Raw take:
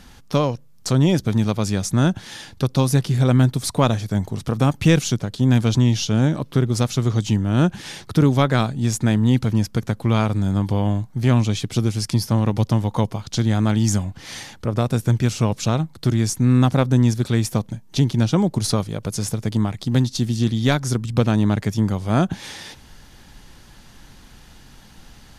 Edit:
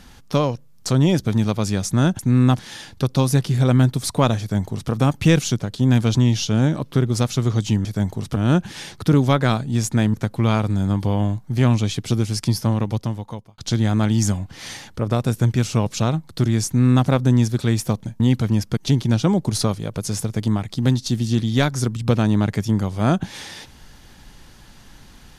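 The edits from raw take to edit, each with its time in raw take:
4–4.51 copy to 7.45
9.23–9.8 move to 17.86
12.26–13.24 fade out
16.33–16.73 copy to 2.19

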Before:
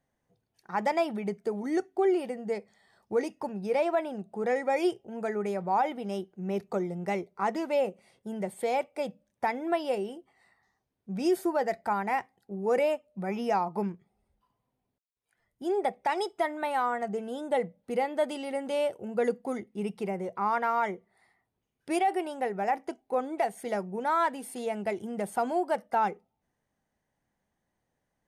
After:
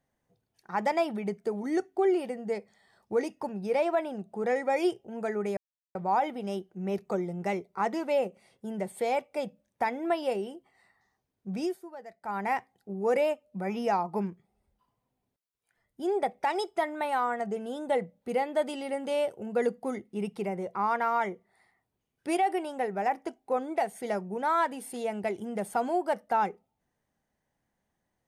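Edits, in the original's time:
5.57 insert silence 0.38 s
11.17–12.05 dip -16.5 dB, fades 0.22 s

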